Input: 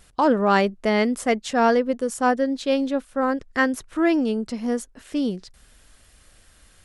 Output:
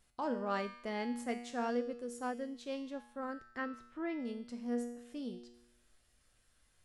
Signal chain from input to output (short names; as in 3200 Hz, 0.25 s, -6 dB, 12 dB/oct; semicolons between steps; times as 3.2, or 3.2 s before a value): 3.58–4.2 Bessel low-pass 2800 Hz, order 2; resonator 120 Hz, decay 0.85 s, harmonics all, mix 80%; gain -6.5 dB